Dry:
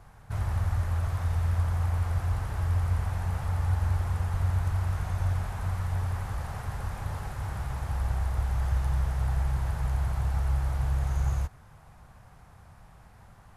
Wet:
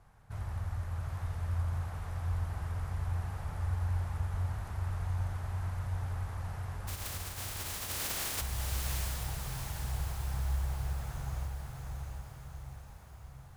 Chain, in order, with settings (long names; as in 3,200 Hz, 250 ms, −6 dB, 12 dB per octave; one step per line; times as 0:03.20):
0:06.87–0:08.40: compressing power law on the bin magnitudes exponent 0.1
on a send: feedback delay with all-pass diffusion 738 ms, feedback 55%, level −3.5 dB
on the sum: level −9 dB